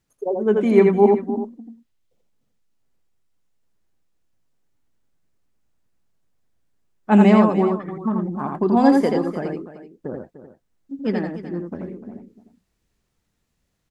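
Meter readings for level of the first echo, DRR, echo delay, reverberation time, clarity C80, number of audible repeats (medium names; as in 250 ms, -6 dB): -3.5 dB, no reverb, 83 ms, no reverb, no reverb, 3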